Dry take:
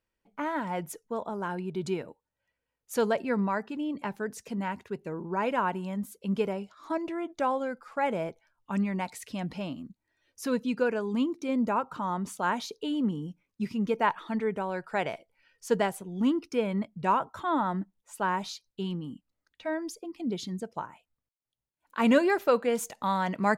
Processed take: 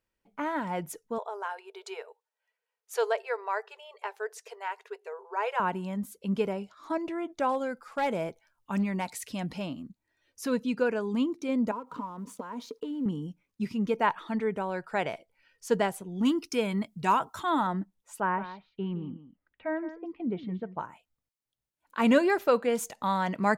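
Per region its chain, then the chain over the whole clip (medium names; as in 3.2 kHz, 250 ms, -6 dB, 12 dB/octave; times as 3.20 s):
1.18–5.60 s: brick-wall FIR high-pass 390 Hz + treble shelf 8.4 kHz -5.5 dB + band-stop 550 Hz, Q 6.9
7.49–9.66 s: treble shelf 4.7 kHz +5.5 dB + overload inside the chain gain 22.5 dB
11.71–13.06 s: companding laws mixed up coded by A + compression 12:1, threshold -42 dBFS + small resonant body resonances 260/460/980 Hz, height 15 dB, ringing for 40 ms
16.25–17.67 s: treble shelf 3.4 kHz +12 dB + band-stop 550 Hz, Q 6.7
18.20–20.80 s: low-pass 2.4 kHz 24 dB/octave + delay 169 ms -13 dB
whole clip: none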